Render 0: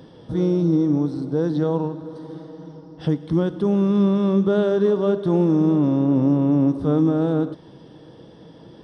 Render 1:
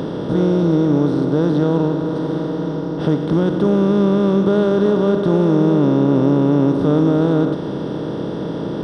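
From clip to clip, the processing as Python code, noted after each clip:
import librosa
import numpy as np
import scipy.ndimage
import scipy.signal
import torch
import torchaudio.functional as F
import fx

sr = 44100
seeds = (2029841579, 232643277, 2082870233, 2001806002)

y = fx.bin_compress(x, sr, power=0.4)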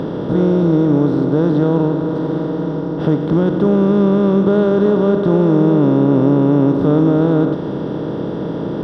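y = fx.high_shelf(x, sr, hz=4000.0, db=-11.0)
y = F.gain(torch.from_numpy(y), 2.0).numpy()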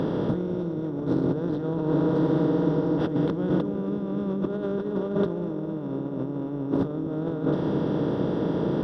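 y = fx.over_compress(x, sr, threshold_db=-17.0, ratio=-0.5)
y = fx.quant_dither(y, sr, seeds[0], bits=12, dither='none')
y = fx.echo_wet_lowpass(y, sr, ms=242, feedback_pct=84, hz=530.0, wet_db=-12)
y = F.gain(torch.from_numpy(y), -8.0).numpy()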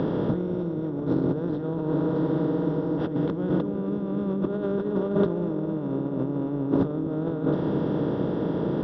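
y = fx.rider(x, sr, range_db=10, speed_s=2.0)
y = fx.air_absorb(y, sr, metres=120.0)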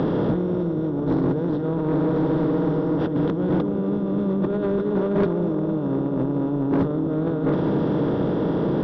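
y = 10.0 ** (-21.0 / 20.0) * np.tanh(x / 10.0 ** (-21.0 / 20.0))
y = F.gain(torch.from_numpy(y), 6.0).numpy()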